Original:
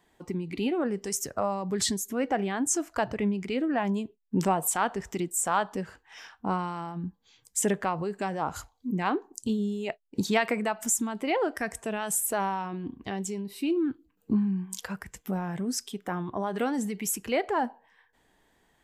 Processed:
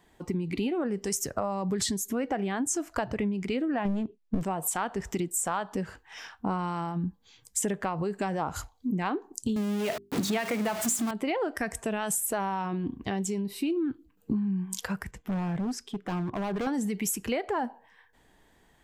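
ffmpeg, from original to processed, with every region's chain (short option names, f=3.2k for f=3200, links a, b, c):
-filter_complex "[0:a]asettb=1/sr,asplit=3[a][b][c];[a]atrim=end=3.854[d];[b]atrim=start=3.85:end=4.43,asetpts=PTS-STARTPTS,afade=t=in:d=0.004:c=qsin,afade=t=out:st=0.576:d=0.004:c=qsin,lowpass=6.6k,equalizer=f=240:t=o:w=2.9:g=8,aeval=exprs='clip(val(0),-1,0.0668)':c=same[e];[c]atrim=start=4.426[f];[d][e]acrossfade=d=0.004:c1=hsin:c2=qsin[g];[g][f]acrossfade=d=0.004:c1=qsin:c2=hsin,asettb=1/sr,asplit=3[h][i][j];[h]atrim=end=9.564[k];[i]atrim=start=9.56:end=11.11,asetpts=PTS-STARTPTS,afade=t=in:d=0.004:c=qsin,afade=t=out:st=1.546:d=0.004:c=qsin,aeval=exprs='val(0)+0.5*0.0422*sgn(val(0))':c=same,highpass=100,bandreject=f=50:t=h:w=6,bandreject=f=100:t=h:w=6,bandreject=f=150:t=h:w=6,bandreject=f=200:t=h:w=6,bandreject=f=250:t=h:w=6,bandreject=f=300:t=h:w=6,bandreject=f=350:t=h:w=6,bandreject=f=400:t=h:w=6[l];[j]atrim=start=11.106[m];[k][l]acrossfade=d=0.004:c1=hsin:c2=qsin[n];[n][m]acrossfade=d=0.004:c1=qsin:c2=hsin,asettb=1/sr,asplit=3[o][p][q];[o]atrim=end=15.114[r];[p]atrim=start=15.11:end=16.67,asetpts=PTS-STARTPTS,afade=t=in:d=0.004:c=qsin,afade=t=out:st=1.556:d=0.004:c=qsin,lowpass=f=1.8k:p=1,asoftclip=type=hard:threshold=-31.5dB[s];[q]atrim=start=16.666[t];[r][s]acrossfade=d=0.004:c1=hsin:c2=qsin[u];[u][t]acrossfade=d=0.004:c1=qsin:c2=hsin,lowshelf=f=170:g=5,acompressor=threshold=-29dB:ratio=6,volume=3dB"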